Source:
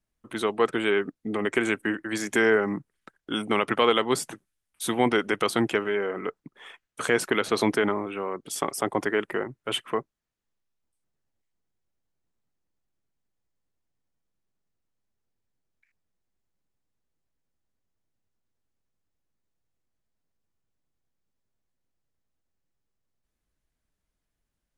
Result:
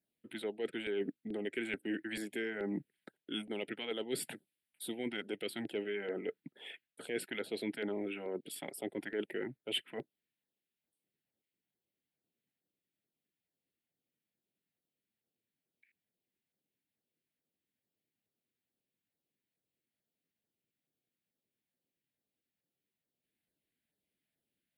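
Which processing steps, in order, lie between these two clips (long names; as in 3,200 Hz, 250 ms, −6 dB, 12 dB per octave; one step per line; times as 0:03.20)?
reversed playback
downward compressor 6 to 1, threshold −32 dBFS, peak gain reduction 15.5 dB
reversed playback
high-pass filter 210 Hz 12 dB per octave
auto-filter notch saw down 2.3 Hz 300–3,200 Hz
phaser with its sweep stopped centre 2,700 Hz, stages 4
level +1 dB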